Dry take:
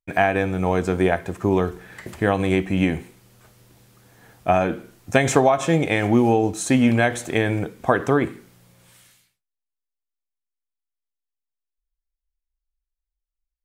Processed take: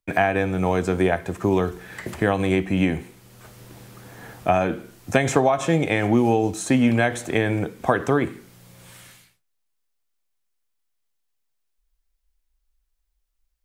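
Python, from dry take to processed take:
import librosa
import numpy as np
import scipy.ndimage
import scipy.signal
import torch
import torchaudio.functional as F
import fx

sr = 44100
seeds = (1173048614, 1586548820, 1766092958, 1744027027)

y = fx.band_squash(x, sr, depth_pct=40)
y = y * librosa.db_to_amplitude(-1.0)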